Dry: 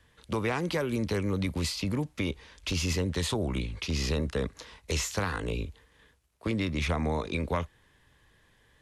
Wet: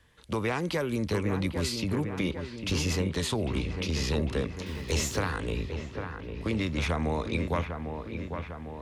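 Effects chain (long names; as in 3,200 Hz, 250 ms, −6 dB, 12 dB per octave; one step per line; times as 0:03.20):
0:04.66–0:05.17: converter with a step at zero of −46.5 dBFS
delay with a low-pass on its return 801 ms, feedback 61%, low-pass 2,400 Hz, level −7 dB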